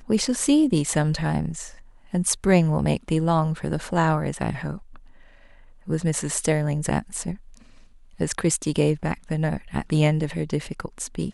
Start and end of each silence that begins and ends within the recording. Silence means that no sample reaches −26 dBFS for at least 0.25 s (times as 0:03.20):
0:01.63–0:02.14
0:04.74–0:05.89
0:07.33–0:08.21